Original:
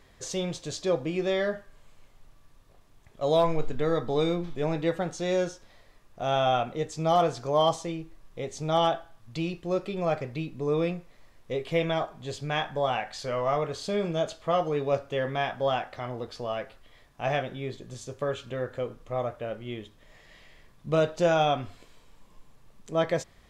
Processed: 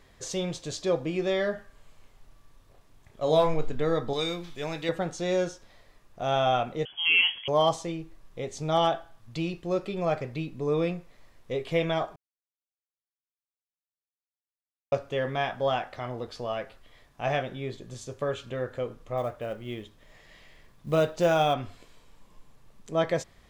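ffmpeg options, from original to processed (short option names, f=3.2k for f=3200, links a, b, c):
-filter_complex "[0:a]asettb=1/sr,asplit=3[a][b][c];[a]atrim=end=1.554[d];[b]atrim=start=1.55:end=3.54,asetpts=PTS-STARTPTS,afade=t=in:d=0.004:c=qsin,afade=t=out:st=1.986:d=0.004:c=qsin,asplit=2[e][f];[f]adelay=32,volume=-7.5dB[g];[e][g]amix=inputs=2:normalize=0,atrim=end_sample=87759[h];[c]atrim=start=3.536[i];[d][h]acrossfade=d=0.004:c1=hsin:c2=qsin[j];[j][i]acrossfade=d=0.004:c1=qsin:c2=hsin,asettb=1/sr,asplit=3[k][l][m];[k]atrim=end=4.134[n];[l]atrim=start=4.13:end=4.89,asetpts=PTS-STARTPTS,afade=t=in:d=0.004:c=qsin,afade=t=out:st=0.756:d=0.004:c=qsin,tiltshelf=f=1.4k:g=-7.5[o];[m]atrim=start=4.886[p];[n][o]acrossfade=d=0.004:c1=hsin:c2=qsin[q];[q][p]acrossfade=d=0.004:c1=qsin:c2=hsin,asettb=1/sr,asplit=3[r][s][t];[r]atrim=end=6.854[u];[s]atrim=start=6.85:end=7.48,asetpts=PTS-STARTPTS,afade=t=in:d=0.004:c=qsin,afade=t=out:st=0.626:d=0.004:c=qsin,lowpass=f=2.9k:t=q:w=0.5098,lowpass=f=2.9k:t=q:w=0.6013,lowpass=f=2.9k:t=q:w=0.9,lowpass=f=2.9k:t=q:w=2.563,afreqshift=-3400[v];[t]atrim=start=7.476[w];[u][v]acrossfade=d=0.004:c1=hsin:c2=qsin[x];[x][w]acrossfade=d=0.004:c1=qsin:c2=hsin,asettb=1/sr,asplit=3[y][z][aa];[y]atrim=end=19.174[ab];[z]atrim=start=19.17:end=21.54,asetpts=PTS-STARTPTS,afade=t=in:d=0.004:c=qsin,afade=t=out:st=2.366:d=0.004:c=qsin,acrusher=bits=8:mode=log:mix=0:aa=0.000001[ac];[aa]atrim=start=21.536[ad];[ab][ac]acrossfade=d=0.004:c1=hsin:c2=qsin[ae];[ae][ad]acrossfade=d=0.004:c1=qsin:c2=hsin,asplit=3[af][ag][ah];[af]atrim=end=12.16,asetpts=PTS-STARTPTS,afade=t=out:st=12.156:d=0.004:c=hsin[ai];[ag]atrim=start=12.16:end=14.92,asetpts=PTS-STARTPTS,volume=0[aj];[ah]atrim=start=14.92,asetpts=PTS-STARTPTS,afade=t=in:d=0.004:c=hsin[ak];[ai][aj][ak]concat=n=3:v=0:a=1"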